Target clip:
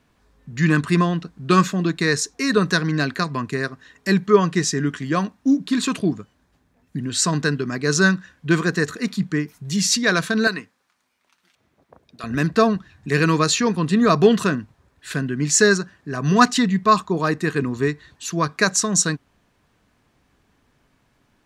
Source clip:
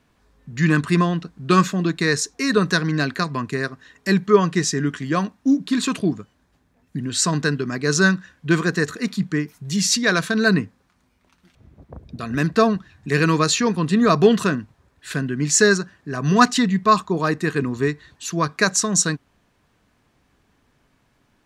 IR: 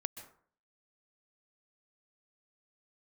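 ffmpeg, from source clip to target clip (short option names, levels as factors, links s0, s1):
-filter_complex "[0:a]asettb=1/sr,asplit=3[s0][s1][s2];[s0]atrim=end=10.474[s3];[s1]atrim=start=10.47:end=12.24,asetpts=PTS-STARTPTS,afade=t=in:d=0.004:c=qsin,afade=t=out:st=1.766:d=0.004:c=qsin,highpass=f=1100:p=1[s4];[s2]atrim=start=12.236[s5];[s3][s4]acrossfade=d=0.004:c1=hsin:c2=qsin[s6];[s6][s5]acrossfade=d=0.004:c1=qsin:c2=hsin"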